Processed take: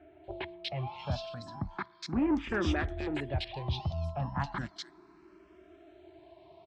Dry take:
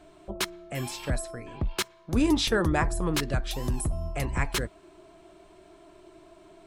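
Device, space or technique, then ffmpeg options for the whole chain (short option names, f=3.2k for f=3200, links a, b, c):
barber-pole phaser into a guitar amplifier: -filter_complex "[0:a]asplit=2[a][b];[b]afreqshift=0.34[c];[a][c]amix=inputs=2:normalize=1,asoftclip=type=tanh:threshold=-22dB,highpass=77,equalizer=f=79:t=q:w=4:g=7,equalizer=f=480:t=q:w=4:g=-9,equalizer=f=810:t=q:w=4:g=5,lowpass=f=4.6k:w=0.5412,lowpass=f=4.6k:w=1.3066,acrossover=split=2500[d][e];[e]adelay=240[f];[d][f]amix=inputs=2:normalize=0"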